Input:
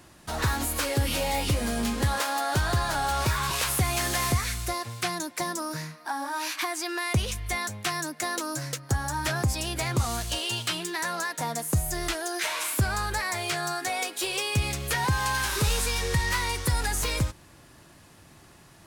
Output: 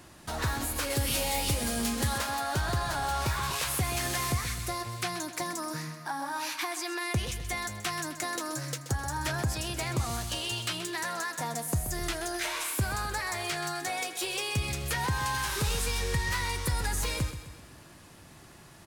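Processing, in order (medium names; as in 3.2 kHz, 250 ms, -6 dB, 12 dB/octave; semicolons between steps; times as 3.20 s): 0.90–2.18 s: treble shelf 4.1 kHz +8.5 dB; in parallel at +2 dB: compression, threshold -38 dBFS, peak gain reduction 17 dB; on the sum: feedback delay 129 ms, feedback 52%, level -11.5 dB; trim -6.5 dB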